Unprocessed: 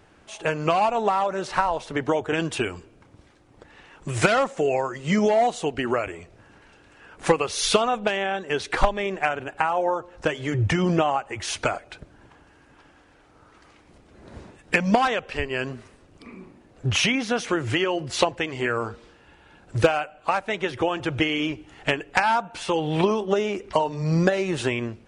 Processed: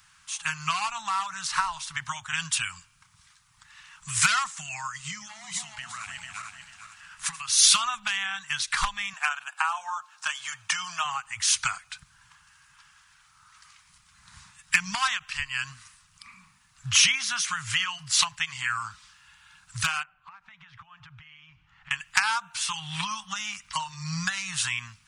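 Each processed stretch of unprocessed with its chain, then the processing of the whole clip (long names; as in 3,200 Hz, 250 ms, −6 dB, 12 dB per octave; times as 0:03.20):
0:04.87–0:07.57: feedback delay that plays each chunk backwards 222 ms, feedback 55%, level −6.5 dB + downward compressor 16 to 1, threshold −26 dBFS
0:09.13–0:11.05: high-pass with resonance 530 Hz, resonance Q 1.8 + notch filter 2,000 Hz, Q 7.9
0:20.03–0:21.91: downward compressor 16 to 1, threshold −34 dBFS + head-to-tape spacing loss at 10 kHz 38 dB + one half of a high-frequency compander decoder only
whole clip: elliptic band-stop filter 160–1,100 Hz, stop band 80 dB; bass and treble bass −11 dB, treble +11 dB; every ending faded ahead of time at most 550 dB per second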